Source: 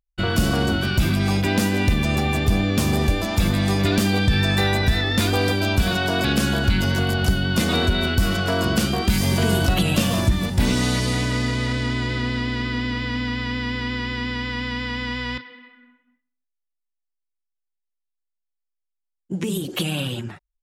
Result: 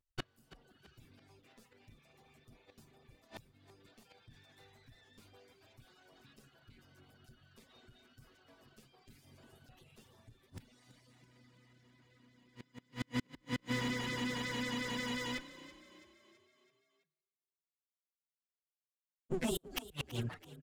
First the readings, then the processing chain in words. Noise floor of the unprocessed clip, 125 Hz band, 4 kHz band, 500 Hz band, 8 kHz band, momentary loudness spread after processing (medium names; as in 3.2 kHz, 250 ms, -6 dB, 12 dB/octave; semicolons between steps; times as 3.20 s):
-80 dBFS, -27.5 dB, -22.0 dB, -21.5 dB, -21.5 dB, 20 LU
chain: comb filter that takes the minimum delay 7.9 ms; inverted gate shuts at -17 dBFS, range -32 dB; reverb removal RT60 1.2 s; frequency-shifting echo 330 ms, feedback 52%, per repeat +30 Hz, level -16.5 dB; trim -6 dB